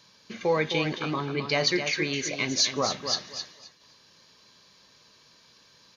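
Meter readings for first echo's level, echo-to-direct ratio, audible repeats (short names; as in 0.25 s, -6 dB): -8.0 dB, -8.0 dB, 2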